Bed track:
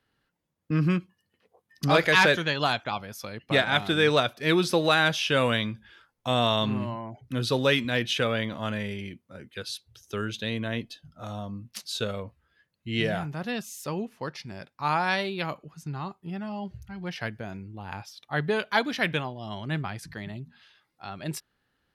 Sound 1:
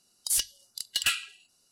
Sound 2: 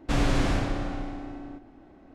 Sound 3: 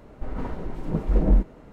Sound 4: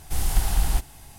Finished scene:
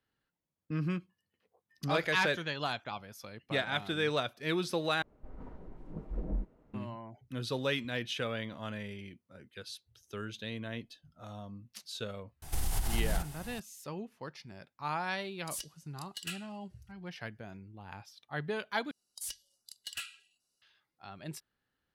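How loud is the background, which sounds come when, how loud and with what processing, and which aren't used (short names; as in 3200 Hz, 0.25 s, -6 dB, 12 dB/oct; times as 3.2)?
bed track -9.5 dB
5.02 replace with 3 -16.5 dB + high shelf 2100 Hz -8.5 dB
12.42 add 4 -1.5 dB + compressor, threshold -25 dBFS
15.21 add 1 -14.5 dB
18.91 replace with 1 -14.5 dB
not used: 2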